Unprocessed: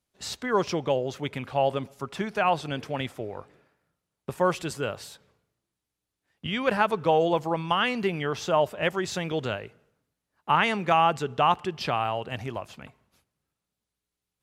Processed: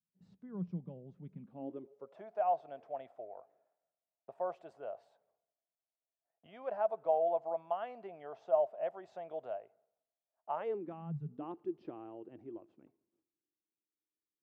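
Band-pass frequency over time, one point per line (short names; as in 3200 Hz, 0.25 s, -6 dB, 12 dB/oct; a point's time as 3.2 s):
band-pass, Q 9.5
1.37 s 180 Hz
2.22 s 670 Hz
10.53 s 670 Hz
11.22 s 130 Hz
11.44 s 330 Hz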